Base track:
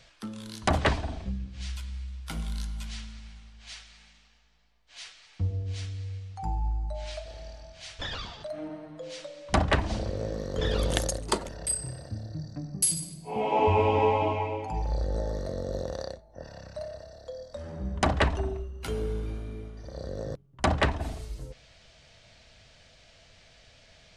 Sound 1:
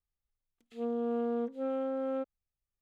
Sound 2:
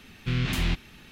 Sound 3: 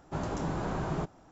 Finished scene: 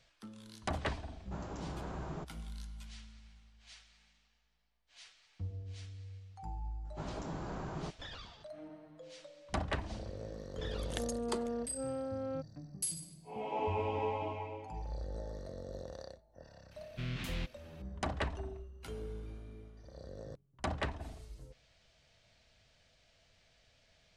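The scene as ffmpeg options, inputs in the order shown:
-filter_complex "[3:a]asplit=2[a][b];[0:a]volume=-12dB[c];[a]atrim=end=1.31,asetpts=PTS-STARTPTS,volume=-10dB,afade=t=in:d=0.004:c=hsin,afade=t=out:st=1.306:d=0.004:c=hsin,adelay=1190[d];[b]atrim=end=1.31,asetpts=PTS-STARTPTS,volume=-8.5dB,afade=t=in:d=0.004:c=hsin,afade=t=out:st=1.306:d=0.004:c=hsin,adelay=6850[e];[1:a]atrim=end=2.81,asetpts=PTS-STARTPTS,volume=-5.5dB,afade=t=in:d=0.004:c=hsin,afade=t=out:st=2.806:d=0.004:c=hsin,adelay=448938S[f];[2:a]atrim=end=1.11,asetpts=PTS-STARTPTS,volume=-12.5dB,afade=t=in:d=0.004:c=hsin,afade=t=out:st=1.106:d=0.004:c=hsin,adelay=16710[g];[c][d][e][f][g]amix=inputs=5:normalize=0"

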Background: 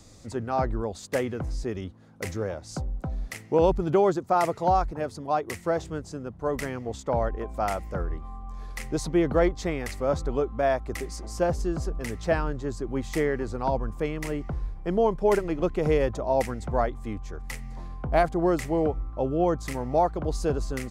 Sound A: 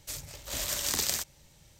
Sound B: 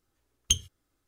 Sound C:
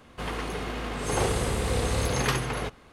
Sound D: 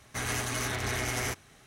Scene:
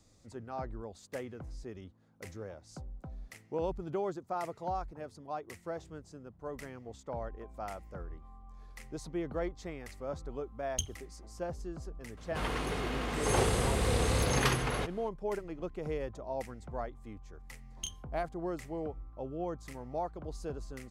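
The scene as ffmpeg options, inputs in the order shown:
-filter_complex "[2:a]asplit=2[a][b];[0:a]volume=-13.5dB[c];[a]aphaser=in_gain=1:out_gain=1:delay=2.5:decay=0.62:speed=1.9:type=triangular[d];[b]asplit=2[e][f];[f]adelay=29,volume=-4dB[g];[e][g]amix=inputs=2:normalize=0[h];[d]atrim=end=1.07,asetpts=PTS-STARTPTS,volume=-13dB,afade=t=in:d=0.004:c=hsin,afade=t=out:st=1.066:d=0.004:c=hsin,adelay=10280[i];[3:a]atrim=end=2.92,asetpts=PTS-STARTPTS,volume=-2.5dB,afade=t=in:d=0.004:c=hsin,afade=t=out:st=2.916:d=0.004:c=hsin,adelay=12170[j];[h]atrim=end=1.07,asetpts=PTS-STARTPTS,volume=-16.5dB,afade=t=in:d=0.004:c=hsin,afade=t=out:st=1.066:d=0.004:c=hsin,adelay=17330[k];[c][i][j][k]amix=inputs=4:normalize=0"

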